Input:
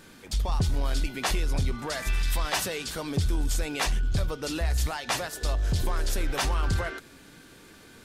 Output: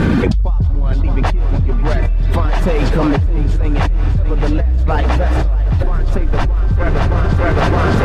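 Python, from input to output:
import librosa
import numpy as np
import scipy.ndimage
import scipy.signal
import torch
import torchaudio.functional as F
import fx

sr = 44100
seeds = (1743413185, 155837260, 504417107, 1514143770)

p1 = scipy.signal.sosfilt(scipy.signal.butter(2, 44.0, 'highpass', fs=sr, output='sos'), x)
p2 = fx.riaa(p1, sr, side='playback')
p3 = fx.dereverb_blind(p2, sr, rt60_s=1.3)
p4 = fx.high_shelf(p3, sr, hz=4000.0, db=-12.0)
p5 = fx.rider(p4, sr, range_db=4, speed_s=0.5)
p6 = p4 + (p5 * 10.0 ** (0.0 / 20.0))
p7 = fx.quant_dither(p6, sr, seeds[0], bits=12, dither='none', at=(4.29, 5.42))
p8 = p7 + fx.echo_thinned(p7, sr, ms=616, feedback_pct=53, hz=220.0, wet_db=-6.5, dry=0)
p9 = fx.rev_freeverb(p8, sr, rt60_s=2.7, hf_ratio=0.9, predelay_ms=85, drr_db=7.0)
p10 = fx.env_flatten(p9, sr, amount_pct=100)
y = p10 * 10.0 ** (-11.0 / 20.0)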